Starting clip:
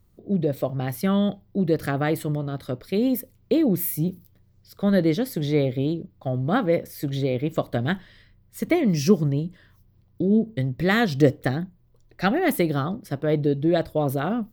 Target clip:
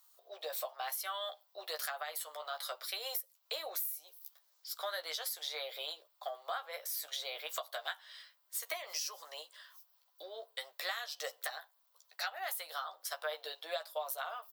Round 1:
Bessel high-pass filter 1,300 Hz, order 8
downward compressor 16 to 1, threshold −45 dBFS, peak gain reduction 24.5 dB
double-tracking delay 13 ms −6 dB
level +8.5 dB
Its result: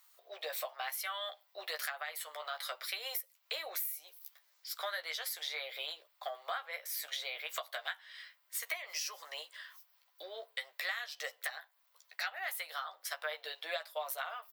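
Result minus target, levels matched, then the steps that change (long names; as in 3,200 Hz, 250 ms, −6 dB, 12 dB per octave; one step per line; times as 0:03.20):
2,000 Hz band +3.5 dB
add after Bessel high-pass filter: parametric band 2,100 Hz −10.5 dB 0.97 octaves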